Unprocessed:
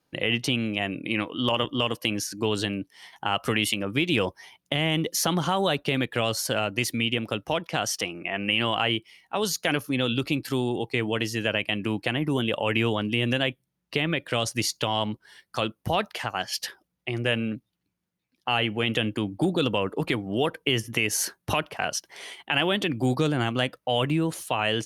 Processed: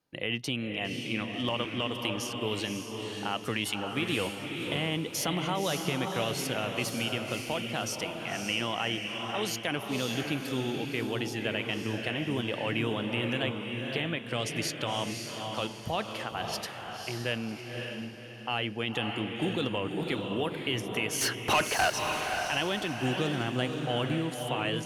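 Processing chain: 21.21–21.90 s: overdrive pedal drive 26 dB, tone 3.8 kHz, clips at -9 dBFS; on a send: echo that smears into a reverb 550 ms, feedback 41%, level -4 dB; on the sum: trim -7 dB

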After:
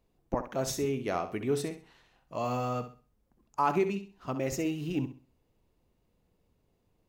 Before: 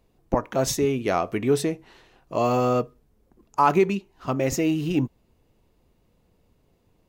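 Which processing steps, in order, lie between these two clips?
1.65–3.59 s: peaking EQ 380 Hz -7 dB 0.8 oct; flutter echo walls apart 11.2 m, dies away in 0.36 s; trim -8.5 dB

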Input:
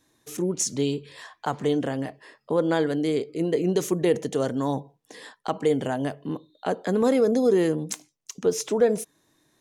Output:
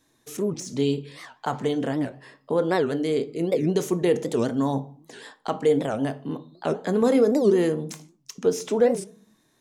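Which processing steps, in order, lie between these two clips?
de-esser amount 60%; on a send at -10 dB: reverberation RT60 0.50 s, pre-delay 4 ms; on the sum: warped record 78 rpm, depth 250 cents

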